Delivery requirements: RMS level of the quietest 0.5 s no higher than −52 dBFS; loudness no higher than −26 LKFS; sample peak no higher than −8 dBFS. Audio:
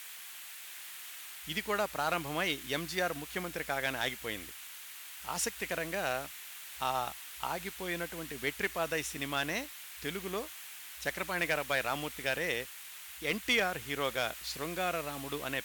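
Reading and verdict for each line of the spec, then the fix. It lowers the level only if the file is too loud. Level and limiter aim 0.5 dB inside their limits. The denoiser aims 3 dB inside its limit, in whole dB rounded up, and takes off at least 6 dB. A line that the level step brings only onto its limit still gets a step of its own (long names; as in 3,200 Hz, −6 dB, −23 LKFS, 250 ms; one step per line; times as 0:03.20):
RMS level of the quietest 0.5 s −48 dBFS: out of spec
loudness −35.0 LKFS: in spec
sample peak −19.5 dBFS: in spec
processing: broadband denoise 7 dB, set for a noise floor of −48 dBFS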